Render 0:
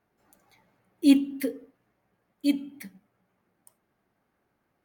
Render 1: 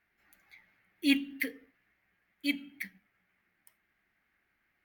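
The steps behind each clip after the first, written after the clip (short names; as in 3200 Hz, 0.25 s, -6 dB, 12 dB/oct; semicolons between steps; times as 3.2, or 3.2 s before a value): graphic EQ 125/250/500/1000/2000/8000 Hz -10/-5/-11/-8/+12/-9 dB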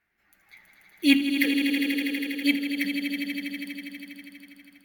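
swelling echo 81 ms, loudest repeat 5, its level -9.5 dB; AGC gain up to 7 dB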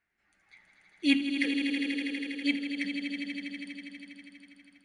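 brick-wall FIR low-pass 10000 Hz; gain -5.5 dB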